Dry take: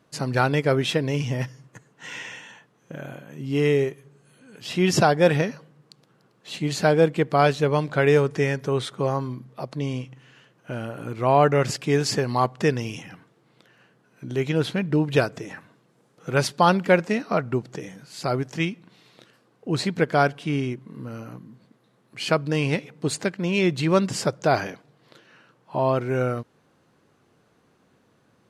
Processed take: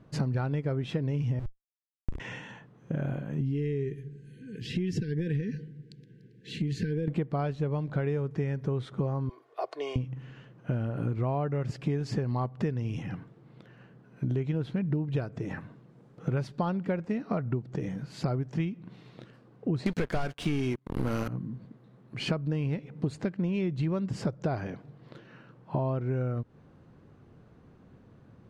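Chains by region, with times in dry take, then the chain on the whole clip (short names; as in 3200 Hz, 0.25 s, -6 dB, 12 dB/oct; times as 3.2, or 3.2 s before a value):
1.39–2.2 LPF 4600 Hz + Schmitt trigger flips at -28.5 dBFS
3.4–7.08 compressor 3:1, threshold -31 dBFS + brick-wall FIR band-stop 510–1500 Hz
9.29–9.96 inverse Chebyshev high-pass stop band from 230 Hz + comb 2.8 ms, depth 56%
19.86–21.28 RIAA curve recording + sample leveller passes 5
whole clip: RIAA curve playback; compressor 12:1, threshold -26 dBFS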